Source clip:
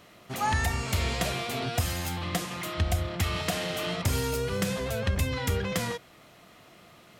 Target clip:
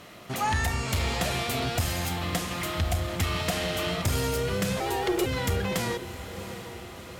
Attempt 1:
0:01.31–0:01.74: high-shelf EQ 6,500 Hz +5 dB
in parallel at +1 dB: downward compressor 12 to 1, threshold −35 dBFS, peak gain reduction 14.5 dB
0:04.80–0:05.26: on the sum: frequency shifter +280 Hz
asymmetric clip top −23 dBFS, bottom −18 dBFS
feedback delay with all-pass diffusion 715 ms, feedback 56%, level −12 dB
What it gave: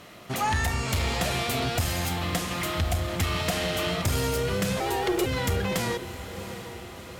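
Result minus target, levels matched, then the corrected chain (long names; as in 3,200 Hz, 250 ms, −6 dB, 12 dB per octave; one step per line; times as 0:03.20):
downward compressor: peak gain reduction −6 dB
0:01.31–0:01.74: high-shelf EQ 6,500 Hz +5 dB
in parallel at +1 dB: downward compressor 12 to 1, threshold −41.5 dBFS, peak gain reduction 20.5 dB
0:04.80–0:05.26: on the sum: frequency shifter +280 Hz
asymmetric clip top −23 dBFS, bottom −18 dBFS
feedback delay with all-pass diffusion 715 ms, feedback 56%, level −12 dB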